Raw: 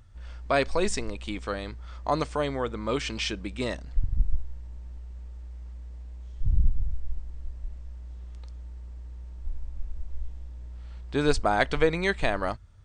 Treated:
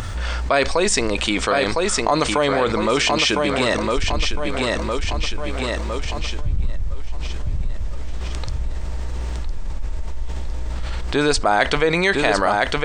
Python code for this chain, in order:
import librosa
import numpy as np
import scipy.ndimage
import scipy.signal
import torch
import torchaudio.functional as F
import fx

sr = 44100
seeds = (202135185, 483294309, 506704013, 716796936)

y = fx.low_shelf(x, sr, hz=240.0, db=-10.5)
y = fx.echo_feedback(y, sr, ms=1008, feedback_pct=40, wet_db=-7)
y = fx.env_flatten(y, sr, amount_pct=70)
y = F.gain(torch.from_numpy(y), 5.0).numpy()